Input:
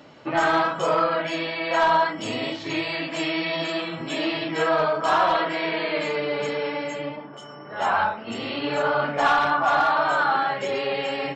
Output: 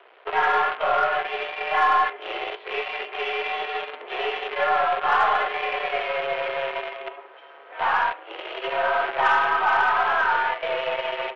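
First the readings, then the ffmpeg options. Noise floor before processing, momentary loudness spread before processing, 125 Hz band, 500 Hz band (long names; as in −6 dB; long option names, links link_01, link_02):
−41 dBFS, 9 LU, below −15 dB, −3.0 dB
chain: -af "aeval=exprs='val(0)+0.00178*(sin(2*PI*60*n/s)+sin(2*PI*2*60*n/s)/2+sin(2*PI*3*60*n/s)/3+sin(2*PI*4*60*n/s)/4+sin(2*PI*5*60*n/s)/5)':channel_layout=same,acrusher=bits=5:dc=4:mix=0:aa=0.000001,highpass=frequency=310:width_type=q:width=0.5412,highpass=frequency=310:width_type=q:width=1.307,lowpass=frequency=3000:width_type=q:width=0.5176,lowpass=frequency=3000:width_type=q:width=0.7071,lowpass=frequency=3000:width_type=q:width=1.932,afreqshift=100,aeval=exprs='0.398*(cos(1*acos(clip(val(0)/0.398,-1,1)))-cos(1*PI/2))+0.01*(cos(6*acos(clip(val(0)/0.398,-1,1)))-cos(6*PI/2))':channel_layout=same"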